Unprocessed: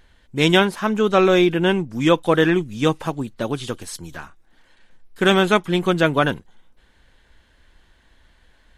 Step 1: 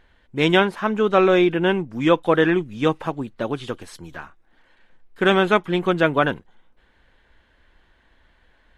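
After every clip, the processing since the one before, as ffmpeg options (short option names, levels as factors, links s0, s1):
-af "bass=f=250:g=-4,treble=f=4000:g=-12"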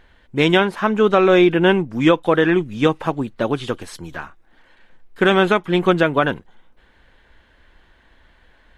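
-af "alimiter=limit=0.376:level=0:latency=1:release=251,volume=1.78"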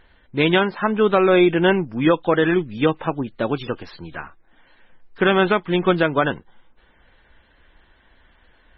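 -af "volume=0.841" -ar 24000 -c:a libmp3lame -b:a 16k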